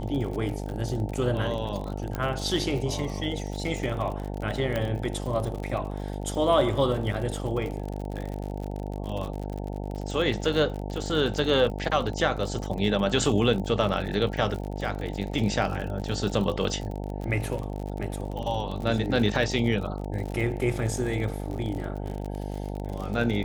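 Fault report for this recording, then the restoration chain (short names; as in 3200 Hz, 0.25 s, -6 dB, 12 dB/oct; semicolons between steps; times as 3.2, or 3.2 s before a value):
buzz 50 Hz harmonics 18 -33 dBFS
crackle 54/s -32 dBFS
2.15 pop -17 dBFS
4.76 pop -15 dBFS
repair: de-click; de-hum 50 Hz, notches 18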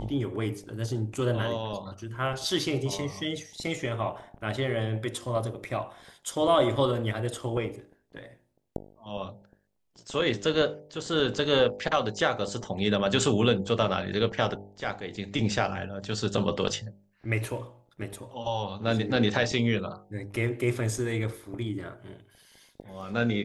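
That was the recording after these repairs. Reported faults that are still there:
4.76 pop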